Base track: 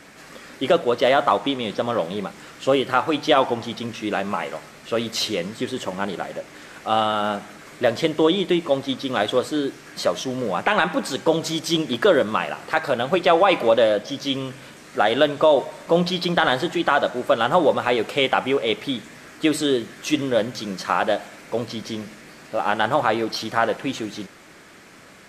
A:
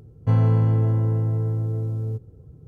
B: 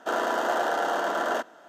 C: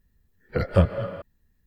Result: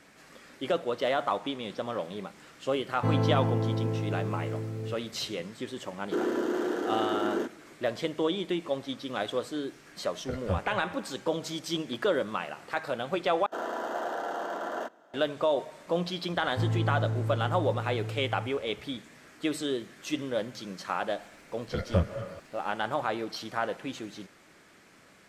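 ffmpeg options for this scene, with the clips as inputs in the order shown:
-filter_complex "[1:a]asplit=2[a][b];[2:a]asplit=2[c][d];[3:a]asplit=2[e][f];[0:a]volume=-10.5dB[g];[a]highpass=190[h];[c]lowshelf=f=500:t=q:w=3:g=10.5[i];[d]tiltshelf=f=1.1k:g=3[j];[g]asplit=2[k][l];[k]atrim=end=13.464[m];[j]atrim=end=1.68,asetpts=PTS-STARTPTS,volume=-8.5dB[n];[l]atrim=start=15.136[o];[h]atrim=end=2.67,asetpts=PTS-STARTPTS,volume=-0.5dB,afade=t=in:d=0.004:c=hsin,afade=t=out:st=2.666:d=0.004:c=hsin,adelay=2760[p];[i]atrim=end=1.68,asetpts=PTS-STARTPTS,volume=-9dB,afade=t=in:d=0.004:c=hsin,afade=t=out:st=1.676:d=0.004:c=hsin,adelay=6050[q];[e]atrim=end=1.66,asetpts=PTS-STARTPTS,volume=-12dB,afade=t=in:d=0.004:c=hsin,afade=t=out:st=1.656:d=0.004:c=hsin,adelay=9730[r];[b]atrim=end=2.67,asetpts=PTS-STARTPTS,volume=-10.5dB,afade=t=in:d=0.004:c=hsin,afade=t=out:st=2.666:d=0.004:c=hsin,adelay=16300[s];[f]atrim=end=1.66,asetpts=PTS-STARTPTS,volume=-7dB,afade=t=in:d=0.004:c=hsin,afade=t=out:st=1.656:d=0.004:c=hsin,adelay=21180[t];[m][n]acrossfade=d=0.004:c1=hsin:c2=hsin[u];[u][o]acrossfade=d=0.004:c1=hsin:c2=hsin[v];[v][p][q][r][s][t]amix=inputs=6:normalize=0"

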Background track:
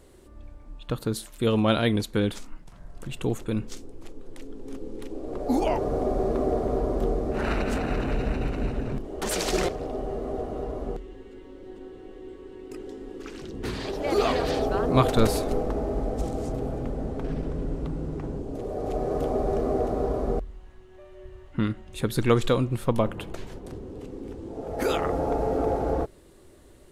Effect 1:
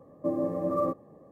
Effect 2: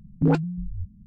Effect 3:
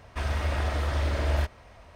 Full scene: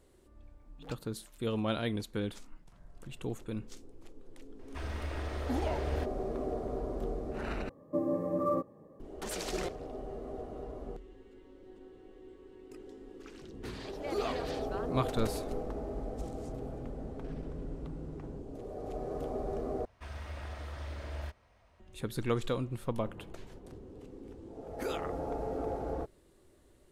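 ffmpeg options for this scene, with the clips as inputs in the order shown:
-filter_complex "[3:a]asplit=2[a][b];[0:a]volume=-10.5dB[c];[2:a]aderivative[d];[1:a]bandreject=f=710:w=6.3[e];[c]asplit=3[f][g][h];[f]atrim=end=7.694[i];[e]atrim=end=1.31,asetpts=PTS-STARTPTS,volume=-2.5dB[j];[g]atrim=start=8.996:end=19.854[k];[b]atrim=end=1.95,asetpts=PTS-STARTPTS,volume=-14.5dB[l];[h]atrim=start=21.796[m];[d]atrim=end=1.06,asetpts=PTS-STARTPTS,volume=-5dB,afade=t=in:d=0.004:c=hsin,afade=t=out:st=1.056:d=0.004:c=hsin,adelay=570[n];[a]atrim=end=1.95,asetpts=PTS-STARTPTS,volume=-10.5dB,afade=t=in:d=0.004:c=hsin,afade=t=out:st=1.946:d=0.004:c=hsin,adelay=4590[o];[i][j]acrossfade=d=0.004:c1=hsin:c2=hsin[p];[p][k]acrossfade=d=0.004:c1=hsin:c2=hsin[q];[q][l]acrossfade=d=0.004:c1=hsin:c2=hsin[r];[r][m]acrossfade=d=0.004:c1=hsin:c2=hsin[s];[s][n][o]amix=inputs=3:normalize=0"

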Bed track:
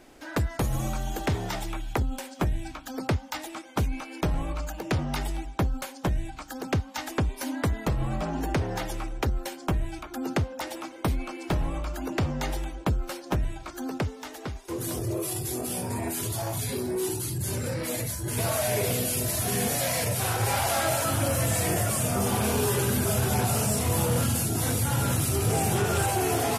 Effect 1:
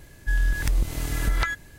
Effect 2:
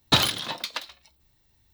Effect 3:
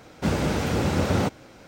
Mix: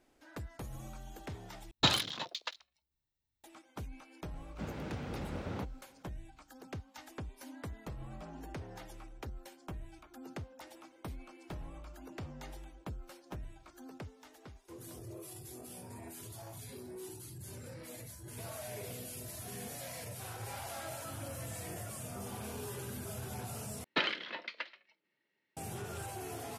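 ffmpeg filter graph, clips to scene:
-filter_complex "[2:a]asplit=2[a][b];[0:a]volume=-17.5dB[c];[a]afwtdn=0.0158[d];[3:a]acrossover=split=4100[e][f];[f]acompressor=threshold=-51dB:ratio=4:attack=1:release=60[g];[e][g]amix=inputs=2:normalize=0[h];[b]highpass=f=240:w=0.5412,highpass=f=240:w=1.3066,equalizer=f=270:t=q:w=4:g=-5,equalizer=f=770:t=q:w=4:g=-9,equalizer=f=1.1k:t=q:w=4:g=-6,equalizer=f=2k:t=q:w=4:g=6,equalizer=f=3.7k:t=q:w=4:g=-10,lowpass=f=3.7k:w=0.5412,lowpass=f=3.7k:w=1.3066[i];[c]asplit=3[j][k][l];[j]atrim=end=1.714[m];[d]atrim=end=1.73,asetpts=PTS-STARTPTS,volume=-7.5dB[n];[k]atrim=start=3.436:end=23.844[o];[i]atrim=end=1.73,asetpts=PTS-STARTPTS,volume=-6.5dB[p];[l]atrim=start=25.566[q];[h]atrim=end=1.67,asetpts=PTS-STARTPTS,volume=-17.5dB,afade=t=in:d=0.004:c=hsin,afade=t=out:st=1.666:d=0.004:c=hsin,adelay=4360[r];[m][n]acrossfade=d=0.004:c1=hsin:c2=hsin[s];[s][o]acrossfade=d=0.004:c1=hsin:c2=hsin[t];[t][p]acrossfade=d=0.004:c1=hsin:c2=hsin[u];[u][q]acrossfade=d=0.004:c1=hsin:c2=hsin[v];[v][r]amix=inputs=2:normalize=0"

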